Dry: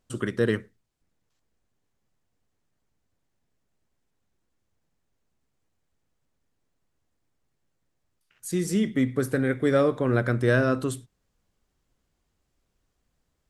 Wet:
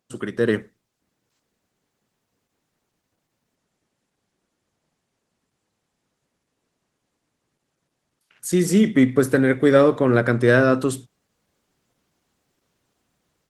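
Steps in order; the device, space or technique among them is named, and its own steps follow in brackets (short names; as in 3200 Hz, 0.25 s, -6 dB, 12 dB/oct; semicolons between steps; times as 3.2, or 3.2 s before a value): video call (HPF 140 Hz 12 dB/oct; AGC gain up to 9 dB; Opus 16 kbps 48000 Hz)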